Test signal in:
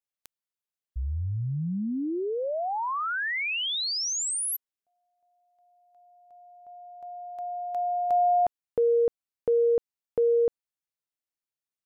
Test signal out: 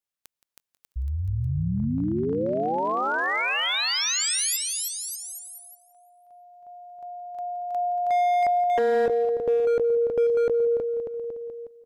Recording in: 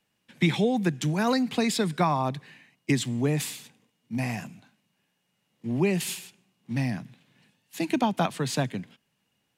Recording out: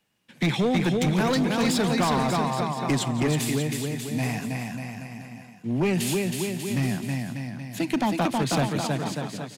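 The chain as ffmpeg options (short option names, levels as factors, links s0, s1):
-filter_complex "[0:a]asplit=2[s0][s1];[s1]aecho=0:1:320|592|823.2|1020|1187:0.631|0.398|0.251|0.158|0.1[s2];[s0][s2]amix=inputs=2:normalize=0,asoftclip=type=hard:threshold=0.0944,asplit=2[s3][s4];[s4]aecho=0:1:171|342|513|684:0.15|0.0673|0.0303|0.0136[s5];[s3][s5]amix=inputs=2:normalize=0,volume=1.26"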